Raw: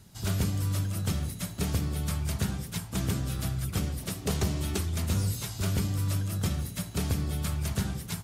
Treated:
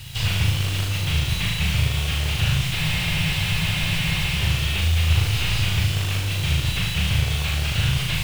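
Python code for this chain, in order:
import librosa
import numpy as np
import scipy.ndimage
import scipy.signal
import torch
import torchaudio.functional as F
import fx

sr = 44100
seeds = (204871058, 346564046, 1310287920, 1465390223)

p1 = fx.tracing_dist(x, sr, depth_ms=0.27)
p2 = fx.curve_eq(p1, sr, hz=(150.0, 250.0, 1400.0, 2800.0, 5800.0), db=(0, -26, -6, 13, -3))
p3 = fx.over_compress(p2, sr, threshold_db=-37.0, ratio=-1.0)
p4 = p2 + (p3 * librosa.db_to_amplitude(1.0))
p5 = fx.quant_companded(p4, sr, bits=4)
p6 = p5 + fx.room_flutter(p5, sr, wall_m=6.5, rt60_s=0.65, dry=0)
p7 = fx.spec_freeze(p6, sr, seeds[0], at_s=2.78, hold_s=1.58)
p8 = fx.slew_limit(p7, sr, full_power_hz=120.0)
y = p8 * librosa.db_to_amplitude(4.5)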